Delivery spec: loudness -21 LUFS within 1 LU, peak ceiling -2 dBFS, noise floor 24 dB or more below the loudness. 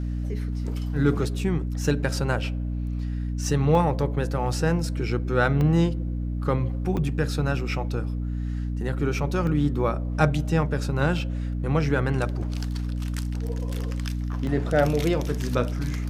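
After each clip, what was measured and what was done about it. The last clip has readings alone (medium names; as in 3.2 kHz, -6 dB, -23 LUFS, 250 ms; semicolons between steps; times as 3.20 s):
dropouts 6; longest dropout 1.7 ms; hum 60 Hz; highest harmonic 300 Hz; hum level -25 dBFS; loudness -26.0 LUFS; peak level -5.5 dBFS; loudness target -21.0 LUFS
-> interpolate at 1.39/3.75/5.61/6.97/9.47/14.47 s, 1.7 ms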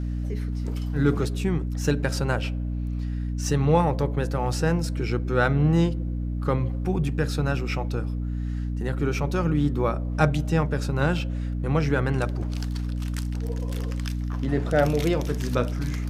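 dropouts 0; hum 60 Hz; highest harmonic 300 Hz; hum level -25 dBFS
-> de-hum 60 Hz, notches 5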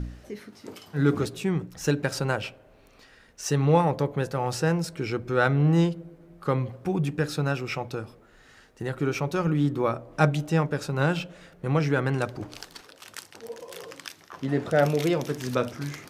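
hum not found; loudness -26.5 LUFS; peak level -6.5 dBFS; loudness target -21.0 LUFS
-> trim +5.5 dB; peak limiter -2 dBFS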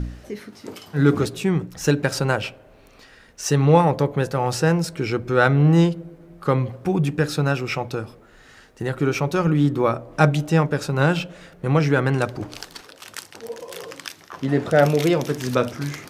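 loudness -21.0 LUFS; peak level -2.0 dBFS; noise floor -50 dBFS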